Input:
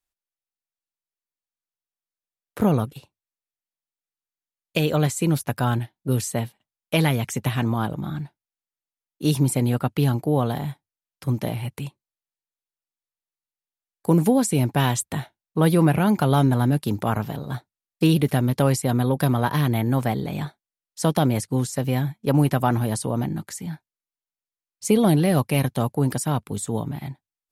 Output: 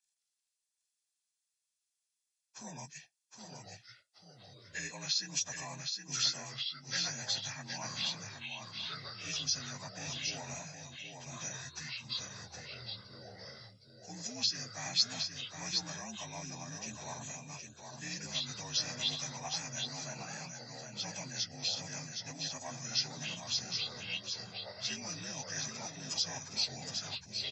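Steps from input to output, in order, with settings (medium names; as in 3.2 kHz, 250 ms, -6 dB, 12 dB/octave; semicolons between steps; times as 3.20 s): frequency axis rescaled in octaves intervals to 83%; comb 1.2 ms, depth 60%; reverse; compression, threshold -26 dBFS, peak gain reduction 12.5 dB; reverse; pre-emphasis filter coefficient 0.97; ever faster or slower copies 165 ms, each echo -4 st, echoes 2, each echo -6 dB; delay 766 ms -5.5 dB; trim +6.5 dB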